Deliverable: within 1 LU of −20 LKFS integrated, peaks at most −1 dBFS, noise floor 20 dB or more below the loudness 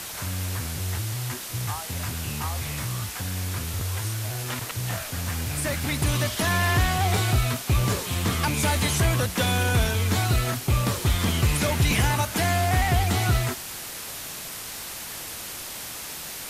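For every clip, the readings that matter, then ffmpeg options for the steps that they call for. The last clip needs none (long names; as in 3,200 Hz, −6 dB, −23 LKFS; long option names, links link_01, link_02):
background noise floor −36 dBFS; target noise floor −46 dBFS; integrated loudness −25.5 LKFS; sample peak −11.5 dBFS; target loudness −20.0 LKFS
→ -af "afftdn=noise_reduction=10:noise_floor=-36"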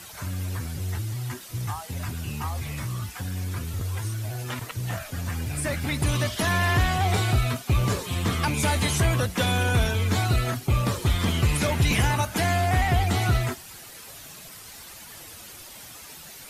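background noise floor −44 dBFS; target noise floor −46 dBFS
→ -af "afftdn=noise_reduction=6:noise_floor=-44"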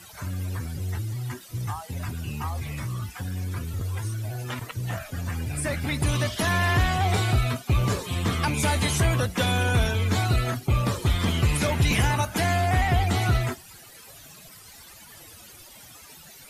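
background noise floor −48 dBFS; integrated loudness −26.0 LKFS; sample peak −12.0 dBFS; target loudness −20.0 LKFS
→ -af "volume=6dB"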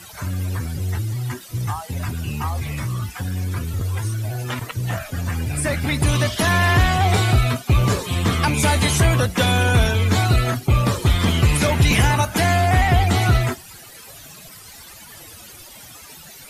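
integrated loudness −20.0 LKFS; sample peak −6.0 dBFS; background noise floor −42 dBFS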